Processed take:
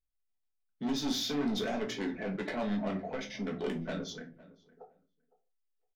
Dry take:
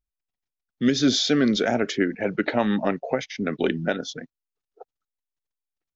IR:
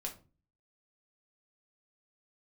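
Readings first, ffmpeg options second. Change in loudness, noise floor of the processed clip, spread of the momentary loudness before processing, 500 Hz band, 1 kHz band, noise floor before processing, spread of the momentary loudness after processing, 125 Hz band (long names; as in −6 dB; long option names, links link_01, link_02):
−11.0 dB, −80 dBFS, 9 LU, −11.5 dB, −10.5 dB, below −85 dBFS, 8 LU, −9.5 dB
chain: -filter_complex "[0:a]asoftclip=type=tanh:threshold=-22dB,asplit=2[link_01][link_02];[link_02]adelay=510,lowpass=frequency=1800:poles=1,volume=-19.5dB,asplit=2[link_03][link_04];[link_04]adelay=510,lowpass=frequency=1800:poles=1,volume=0.16[link_05];[link_01][link_03][link_05]amix=inputs=3:normalize=0[link_06];[1:a]atrim=start_sample=2205,afade=type=out:start_time=0.26:duration=0.01,atrim=end_sample=11907[link_07];[link_06][link_07]afir=irnorm=-1:irlink=0,volume=-6.5dB"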